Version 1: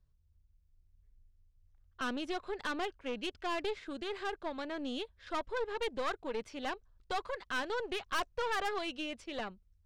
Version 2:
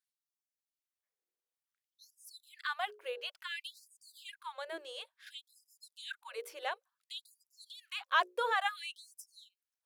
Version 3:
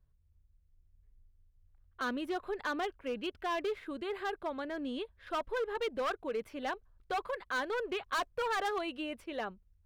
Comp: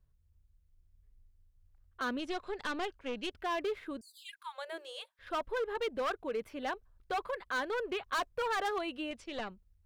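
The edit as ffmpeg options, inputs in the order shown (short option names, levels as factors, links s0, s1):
-filter_complex "[0:a]asplit=2[s0][s1];[2:a]asplit=4[s2][s3][s4][s5];[s2]atrim=end=2.192[s6];[s0]atrim=start=2.188:end=3.332[s7];[s3]atrim=start=3.328:end=4.012[s8];[1:a]atrim=start=4.008:end=5.192[s9];[s4]atrim=start=5.188:end=9.112[s10];[s1]atrim=start=9.108:end=9.512[s11];[s5]atrim=start=9.508[s12];[s6][s7]acrossfade=d=0.004:c1=hsin:c2=hsin[s13];[s13][s8]acrossfade=d=0.004:c1=hsin:c2=hsin[s14];[s14][s9]acrossfade=d=0.004:c1=hsin:c2=hsin[s15];[s15][s10]acrossfade=d=0.004:c1=hsin:c2=hsin[s16];[s16][s11]acrossfade=d=0.004:c1=hsin:c2=hsin[s17];[s17][s12]acrossfade=d=0.004:c1=hsin:c2=hsin"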